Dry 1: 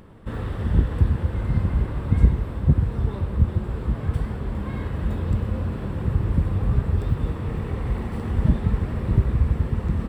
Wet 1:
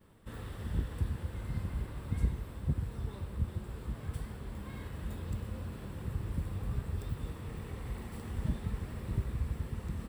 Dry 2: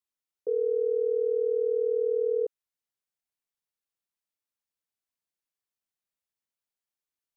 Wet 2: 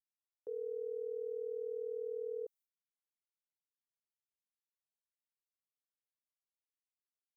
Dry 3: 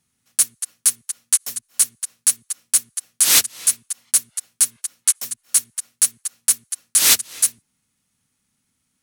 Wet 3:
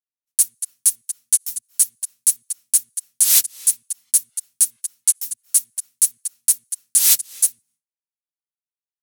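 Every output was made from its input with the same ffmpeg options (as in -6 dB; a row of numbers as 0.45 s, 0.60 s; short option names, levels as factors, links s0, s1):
-af "agate=range=0.0224:threshold=0.00398:ratio=3:detection=peak,crystalizer=i=4:c=0,volume=0.188"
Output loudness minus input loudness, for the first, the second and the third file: -14.5 LU, -14.0 LU, +0.5 LU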